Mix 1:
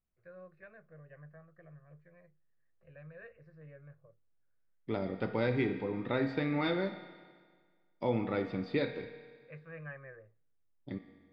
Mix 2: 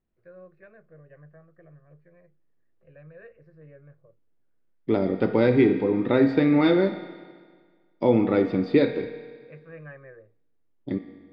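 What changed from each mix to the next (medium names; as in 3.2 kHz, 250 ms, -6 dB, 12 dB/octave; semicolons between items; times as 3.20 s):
second voice +6.5 dB; master: add peaking EQ 330 Hz +8.5 dB 1.5 oct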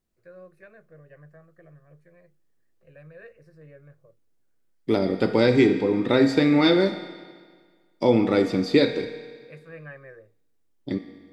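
master: remove distance through air 360 m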